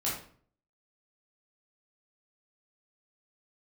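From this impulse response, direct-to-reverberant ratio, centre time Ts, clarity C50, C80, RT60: -7.0 dB, 43 ms, 3.0 dB, 8.0 dB, 0.50 s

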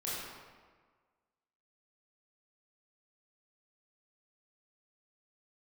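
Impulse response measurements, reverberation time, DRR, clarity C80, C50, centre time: 1.5 s, -9.0 dB, 0.0 dB, -2.5 dB, 111 ms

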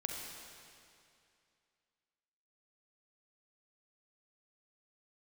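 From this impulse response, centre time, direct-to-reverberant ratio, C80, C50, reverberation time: 103 ms, 0.5 dB, 2.5 dB, 1.0 dB, 2.5 s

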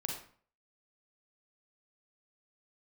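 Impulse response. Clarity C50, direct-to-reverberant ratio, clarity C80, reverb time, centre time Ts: 3.0 dB, 0.0 dB, 8.0 dB, 0.50 s, 35 ms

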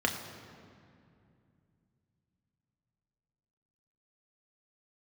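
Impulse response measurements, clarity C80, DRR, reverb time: 8.0 dB, 2.0 dB, 2.5 s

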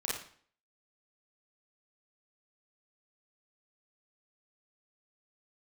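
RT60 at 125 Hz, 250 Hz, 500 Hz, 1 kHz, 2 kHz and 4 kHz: 0.50 s, 0.55 s, 0.50 s, 0.50 s, 0.50 s, 0.45 s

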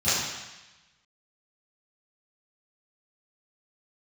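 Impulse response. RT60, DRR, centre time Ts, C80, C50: 1.1 s, -18.0 dB, 98 ms, 1.0 dB, -2.0 dB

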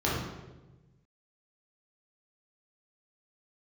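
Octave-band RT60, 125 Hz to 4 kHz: 1.8 s, 1.5 s, 1.3 s, 0.95 s, 0.90 s, 0.80 s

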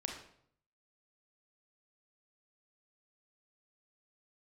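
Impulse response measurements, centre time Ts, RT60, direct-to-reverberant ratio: 31 ms, 0.65 s, 1.0 dB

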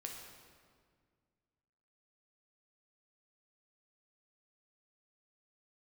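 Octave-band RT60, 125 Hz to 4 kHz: 2.5 s, 2.4 s, 2.0 s, 1.8 s, 1.6 s, 1.3 s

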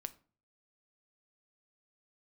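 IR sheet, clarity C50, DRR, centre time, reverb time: 18.5 dB, 11.0 dB, 3 ms, 0.40 s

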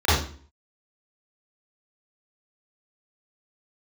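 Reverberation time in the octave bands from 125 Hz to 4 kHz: 0.50 s, 0.55 s, 0.45 s, 0.45 s, 0.40 s, 0.40 s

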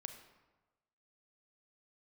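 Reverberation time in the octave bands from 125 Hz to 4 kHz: 1.3 s, 1.1 s, 1.2 s, 1.2 s, 0.95 s, 0.75 s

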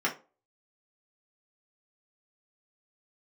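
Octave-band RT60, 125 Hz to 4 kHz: 0.30 s, 0.35 s, 0.35 s, 0.30 s, 0.25 s, 0.20 s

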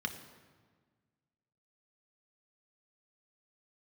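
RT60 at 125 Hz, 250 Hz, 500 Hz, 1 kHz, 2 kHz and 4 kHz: 2.0 s, 1.9 s, 1.6 s, 1.5 s, 1.3 s, 1.1 s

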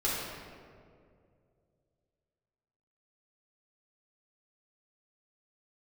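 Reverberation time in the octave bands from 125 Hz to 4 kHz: 3.2 s, 2.6 s, 2.7 s, 1.9 s, 1.5 s, 1.1 s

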